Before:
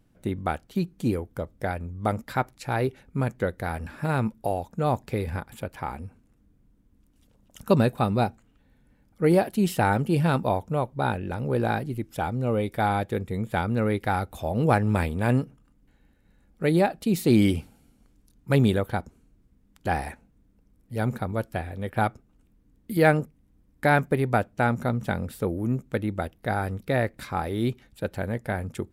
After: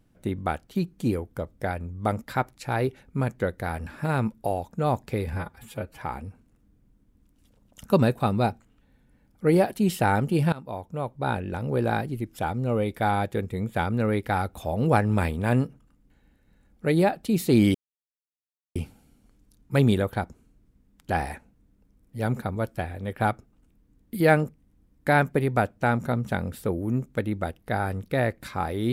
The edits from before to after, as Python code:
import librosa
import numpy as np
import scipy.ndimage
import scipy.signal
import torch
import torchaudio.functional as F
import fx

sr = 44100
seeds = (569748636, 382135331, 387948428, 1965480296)

y = fx.edit(x, sr, fx.stretch_span(start_s=5.33, length_s=0.45, factor=1.5),
    fx.fade_in_from(start_s=10.3, length_s=0.88, floor_db=-20.0),
    fx.insert_silence(at_s=17.52, length_s=1.01), tone=tone)